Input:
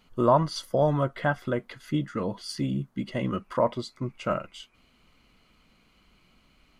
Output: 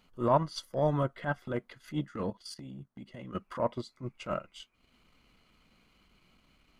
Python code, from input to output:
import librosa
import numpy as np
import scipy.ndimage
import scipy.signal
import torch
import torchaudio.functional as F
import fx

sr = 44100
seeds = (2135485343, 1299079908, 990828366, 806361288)

y = fx.transient(x, sr, attack_db=-12, sustain_db=-8)
y = fx.level_steps(y, sr, step_db=14, at=(2.3, 3.35))
y = y * librosa.db_to_amplitude(-2.0)